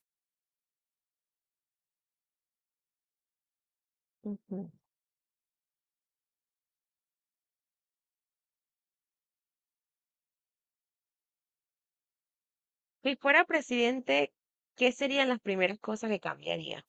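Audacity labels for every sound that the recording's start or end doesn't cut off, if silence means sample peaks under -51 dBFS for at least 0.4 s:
4.240000	4.700000	sound
13.050000	14.270000	sound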